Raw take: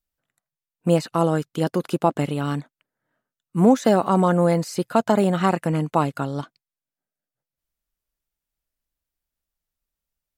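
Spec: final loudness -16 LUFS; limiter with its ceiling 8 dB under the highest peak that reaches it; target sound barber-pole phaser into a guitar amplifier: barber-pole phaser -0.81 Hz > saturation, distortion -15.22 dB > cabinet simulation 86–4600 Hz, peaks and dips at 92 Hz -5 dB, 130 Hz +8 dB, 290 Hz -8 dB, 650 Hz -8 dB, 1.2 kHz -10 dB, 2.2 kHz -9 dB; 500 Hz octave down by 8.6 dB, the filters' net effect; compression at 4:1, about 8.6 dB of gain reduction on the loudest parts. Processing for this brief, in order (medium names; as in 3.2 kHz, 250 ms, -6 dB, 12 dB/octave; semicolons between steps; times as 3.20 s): peaking EQ 500 Hz -6.5 dB; compression 4:1, threshold -23 dBFS; peak limiter -19 dBFS; barber-pole phaser -0.81 Hz; saturation -26.5 dBFS; cabinet simulation 86–4600 Hz, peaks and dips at 92 Hz -5 dB, 130 Hz +8 dB, 290 Hz -8 dB, 650 Hz -8 dB, 1.2 kHz -10 dB, 2.2 kHz -9 dB; trim +20 dB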